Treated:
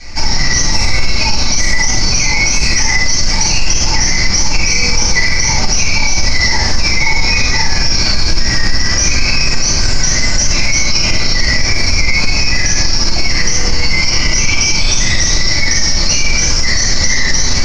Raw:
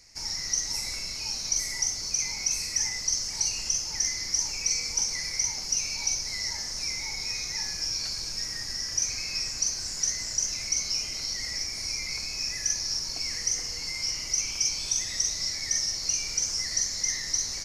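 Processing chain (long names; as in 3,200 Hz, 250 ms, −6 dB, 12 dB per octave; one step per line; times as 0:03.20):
low-pass filter 3,500 Hz 12 dB per octave
notch filter 430 Hz, Q 12
rectangular room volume 430 cubic metres, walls furnished, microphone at 8.3 metres
boost into a limiter +19 dB
level −1 dB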